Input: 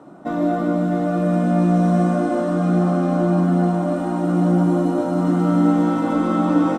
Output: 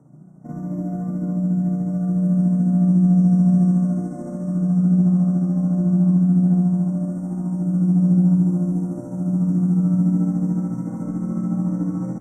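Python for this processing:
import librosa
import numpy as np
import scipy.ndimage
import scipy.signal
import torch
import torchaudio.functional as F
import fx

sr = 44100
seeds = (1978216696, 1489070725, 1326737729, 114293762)

y = fx.curve_eq(x, sr, hz=(100.0, 140.0, 300.0, 2200.0, 6500.0), db=(0, 11, -11, -22, -5))
y = fx.stretch_grains(y, sr, factor=1.8, grain_ms=145.0)
y = fx.brickwall_bandstop(y, sr, low_hz=2300.0, high_hz=5400.0)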